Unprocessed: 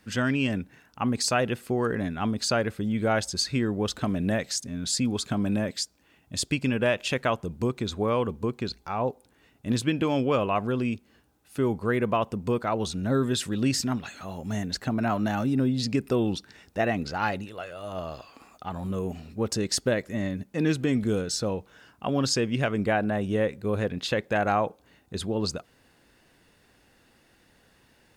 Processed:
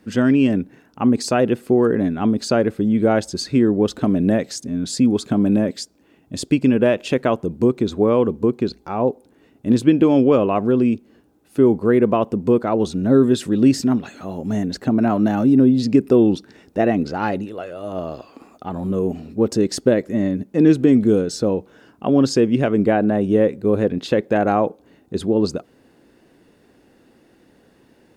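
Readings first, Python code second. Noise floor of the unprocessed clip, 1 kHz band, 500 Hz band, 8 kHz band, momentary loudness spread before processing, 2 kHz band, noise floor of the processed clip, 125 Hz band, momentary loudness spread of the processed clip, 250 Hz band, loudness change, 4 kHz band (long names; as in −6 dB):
−62 dBFS, +4.5 dB, +10.0 dB, −1.0 dB, 10 LU, +1.0 dB, −56 dBFS, +5.5 dB, 13 LU, +11.5 dB, +9.5 dB, −0.5 dB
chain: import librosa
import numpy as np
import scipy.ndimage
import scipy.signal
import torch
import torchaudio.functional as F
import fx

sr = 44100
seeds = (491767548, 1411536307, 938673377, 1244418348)

y = fx.peak_eq(x, sr, hz=320.0, db=14.0, octaves=2.3)
y = F.gain(torch.from_numpy(y), -1.0).numpy()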